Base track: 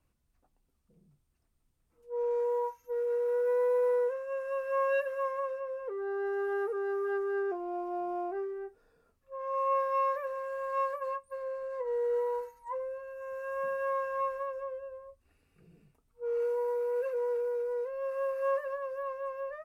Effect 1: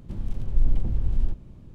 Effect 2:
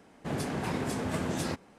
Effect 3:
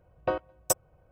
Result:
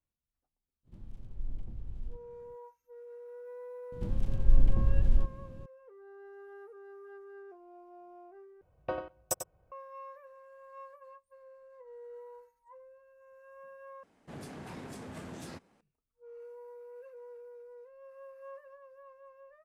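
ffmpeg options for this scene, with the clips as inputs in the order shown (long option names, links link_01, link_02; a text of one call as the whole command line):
ffmpeg -i bed.wav -i cue0.wav -i cue1.wav -i cue2.wav -filter_complex "[1:a]asplit=2[link_01][link_02];[0:a]volume=-17.5dB[link_03];[3:a]asplit=2[link_04][link_05];[link_05]adelay=93.29,volume=-8dB,highshelf=frequency=4000:gain=-2.1[link_06];[link_04][link_06]amix=inputs=2:normalize=0[link_07];[2:a]asoftclip=type=tanh:threshold=-24.5dB[link_08];[link_03]asplit=3[link_09][link_10][link_11];[link_09]atrim=end=8.614[link_12];[link_07]atrim=end=1.11,asetpts=PTS-STARTPTS,volume=-7dB[link_13];[link_10]atrim=start=9.716:end=14.034[link_14];[link_08]atrim=end=1.78,asetpts=PTS-STARTPTS,volume=-11dB[link_15];[link_11]atrim=start=15.806[link_16];[link_01]atrim=end=1.74,asetpts=PTS-STARTPTS,volume=-17dB,afade=type=in:duration=0.05,afade=type=out:start_time=1.69:duration=0.05,adelay=830[link_17];[link_02]atrim=end=1.74,asetpts=PTS-STARTPTS,volume=-1dB,afade=type=in:duration=0.004:curve=hsin,afade=type=out:start_time=1.736:duration=0.004:curve=hsin,adelay=3920[link_18];[link_12][link_13]acrossfade=duration=0.004:curve1=hsin:curve2=hsin[link_19];[link_19][link_14]acrossfade=duration=0.004:curve1=hsin:curve2=hsin[link_20];[link_20][link_15]acrossfade=duration=0.004:curve1=hsin:curve2=hsin[link_21];[link_21][link_16]acrossfade=duration=0.004:curve1=hsin:curve2=hsin[link_22];[link_22][link_17][link_18]amix=inputs=3:normalize=0" out.wav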